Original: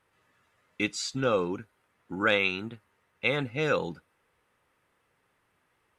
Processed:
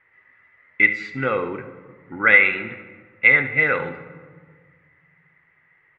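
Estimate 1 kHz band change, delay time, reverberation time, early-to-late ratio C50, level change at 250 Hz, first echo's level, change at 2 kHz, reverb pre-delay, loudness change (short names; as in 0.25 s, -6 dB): +6.0 dB, 71 ms, 1.7 s, 10.0 dB, +1.5 dB, -14.5 dB, +15.0 dB, 7 ms, +11.0 dB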